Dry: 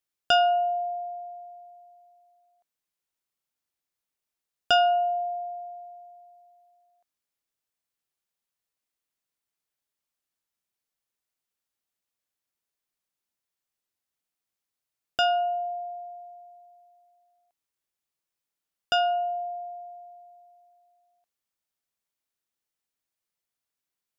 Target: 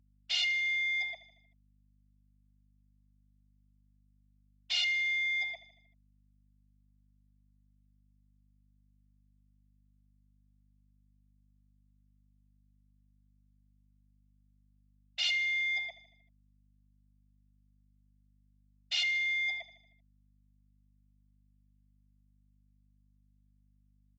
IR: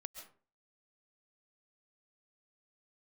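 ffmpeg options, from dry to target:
-filter_complex "[0:a]afftfilt=real='re*gte(hypot(re,im),0.2)':imag='im*gte(hypot(re,im),0.2)':win_size=1024:overlap=0.75,areverse,acompressor=threshold=-35dB:ratio=10,areverse,asplit=2[link_01][link_02];[link_02]highpass=frequency=720:poles=1,volume=11dB,asoftclip=type=tanh:threshold=-31dB[link_03];[link_01][link_03]amix=inputs=2:normalize=0,lowpass=frequency=1100:poles=1,volume=-6dB,afftfilt=real='re*lt(hypot(re,im),0.0398)':imag='im*lt(hypot(re,im),0.0398)':win_size=1024:overlap=0.75,aresample=16000,aeval=exprs='0.00841*sin(PI/2*5.62*val(0)/0.00841)':channel_layout=same,aresample=44100,agate=range=-33dB:threshold=-43dB:ratio=3:detection=peak,highpass=frequency=590:width=0.5412,highpass=frequency=590:width=1.3066,aexciter=amount=11.6:drive=7.5:freq=2200,lowpass=frequency=3400:width=0.5412,lowpass=frequency=3400:width=1.3066,aecho=1:1:77|154|231|308|385:0.178|0.0978|0.0538|0.0296|0.0163,aeval=exprs='val(0)+0.000447*(sin(2*PI*50*n/s)+sin(2*PI*2*50*n/s)/2+sin(2*PI*3*50*n/s)/3+sin(2*PI*4*50*n/s)/4+sin(2*PI*5*50*n/s)/5)':channel_layout=same,volume=1dB" -ar 24000 -c:a libmp3lame -b:a 40k

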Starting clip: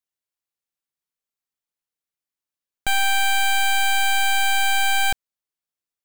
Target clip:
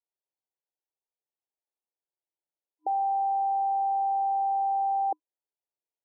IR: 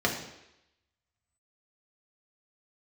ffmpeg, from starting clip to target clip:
-af "afftfilt=real='re*between(b*sr/4096,310,1000)':imag='im*between(b*sr/4096,310,1000)':win_size=4096:overlap=0.75"

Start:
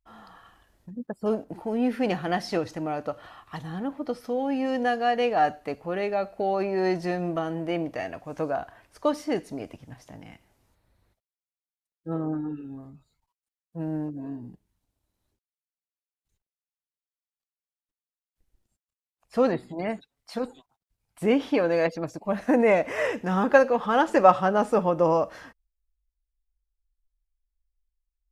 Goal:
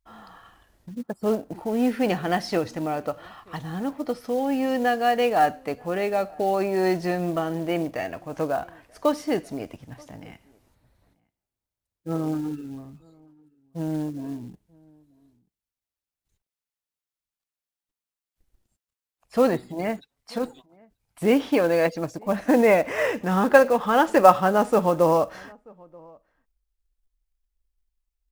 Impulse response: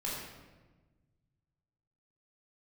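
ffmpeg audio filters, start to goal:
-filter_complex "[0:a]acrusher=bits=6:mode=log:mix=0:aa=0.000001,asplit=2[link_01][link_02];[link_02]adelay=932.9,volume=-27dB,highshelf=frequency=4000:gain=-21[link_03];[link_01][link_03]amix=inputs=2:normalize=0,volume=2.5dB"

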